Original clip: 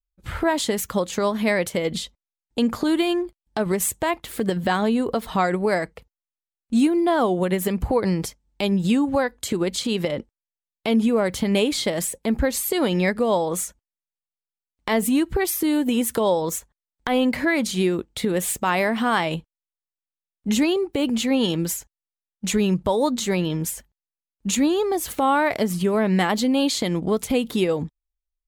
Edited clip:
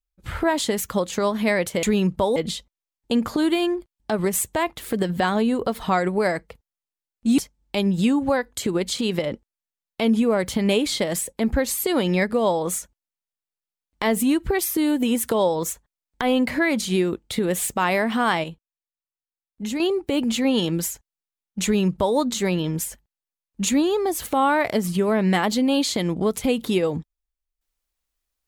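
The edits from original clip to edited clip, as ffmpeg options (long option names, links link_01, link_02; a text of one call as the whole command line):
ffmpeg -i in.wav -filter_complex "[0:a]asplit=6[link_01][link_02][link_03][link_04][link_05][link_06];[link_01]atrim=end=1.832[link_07];[link_02]atrim=start=22.498:end=23.032[link_08];[link_03]atrim=start=1.828:end=6.852[link_09];[link_04]atrim=start=8.238:end=19.302[link_10];[link_05]atrim=start=19.298:end=20.662,asetpts=PTS-STARTPTS,volume=-7.5dB[link_11];[link_06]atrim=start=20.658[link_12];[link_07][link_08]acrossfade=duration=0.004:curve1=hsin:curve2=hsin[link_13];[link_13][link_09]acrossfade=duration=0.004:curve1=hsin:curve2=hsin[link_14];[link_14][link_10]acrossfade=duration=0.004:curve1=hsin:curve2=hsin[link_15];[link_15][link_11]acrossfade=duration=0.004:curve1=hsin:curve2=hsin[link_16];[link_16][link_12]acrossfade=duration=0.004:curve1=hsin:curve2=hsin" out.wav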